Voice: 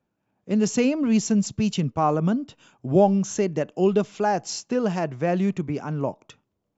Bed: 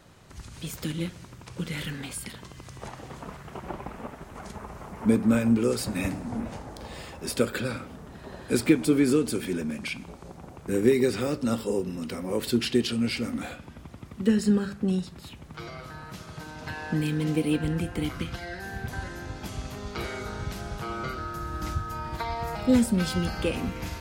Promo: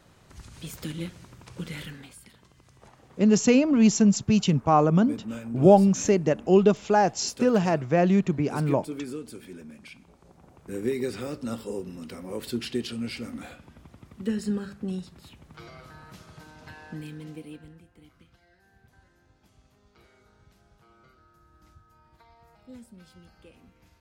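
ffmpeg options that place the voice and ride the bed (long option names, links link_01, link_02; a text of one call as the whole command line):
ffmpeg -i stem1.wav -i stem2.wav -filter_complex "[0:a]adelay=2700,volume=2dB[link_01];[1:a]volume=4.5dB,afade=type=out:start_time=1.69:duration=0.47:silence=0.298538,afade=type=in:start_time=10.09:duration=1.01:silence=0.421697,afade=type=out:start_time=16.11:duration=1.71:silence=0.105925[link_02];[link_01][link_02]amix=inputs=2:normalize=0" out.wav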